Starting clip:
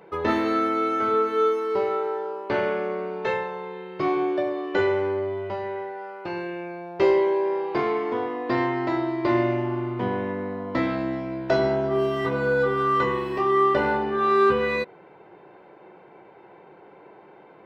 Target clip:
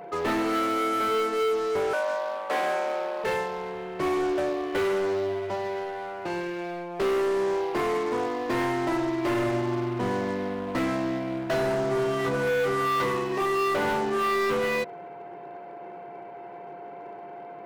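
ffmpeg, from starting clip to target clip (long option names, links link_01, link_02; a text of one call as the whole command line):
ffmpeg -i in.wav -filter_complex "[0:a]highpass=frequency=99:width=0.5412,highpass=frequency=99:width=1.3066,equalizer=frequency=3600:width_type=o:width=0.24:gain=-7,asoftclip=type=hard:threshold=-23dB,aeval=exprs='val(0)+0.00631*sin(2*PI*700*n/s)':channel_layout=same,asplit=2[link_01][link_02];[link_02]aeval=exprs='0.0126*(abs(mod(val(0)/0.0126+3,4)-2)-1)':channel_layout=same,volume=-5dB[link_03];[link_01][link_03]amix=inputs=2:normalize=0,asettb=1/sr,asplit=3[link_04][link_05][link_06];[link_04]atrim=end=1.934[link_07];[link_05]atrim=start=1.93:end=3.24,asetpts=PTS-STARTPTS,afade=type=in:duration=0.004:curve=qsin,afade=type=out:start_time=1.306:duration=0.004:curve=qsin,afreqshift=170[link_08];[link_06]atrim=start=3.236[link_09];[link_07][link_08]acrossfade=duration=0.004:curve1=hsin:curve2=qsin[link_10];[link_10][link_09]acrossfade=duration=0.004:curve1=qsin:curve2=hsin" out.wav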